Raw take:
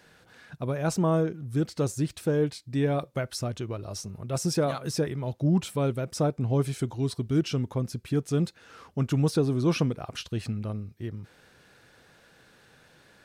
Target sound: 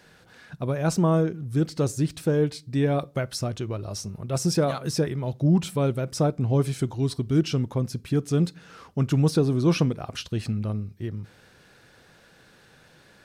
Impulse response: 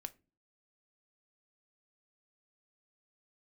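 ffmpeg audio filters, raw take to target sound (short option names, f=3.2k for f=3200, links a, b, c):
-filter_complex "[0:a]asplit=2[a][b];[b]equalizer=f=5k:w=1.5:g=5.5[c];[1:a]atrim=start_sample=2205,asetrate=30870,aresample=44100,lowshelf=f=370:g=7.5[d];[c][d]afir=irnorm=-1:irlink=0,volume=-9.5dB[e];[a][e]amix=inputs=2:normalize=0"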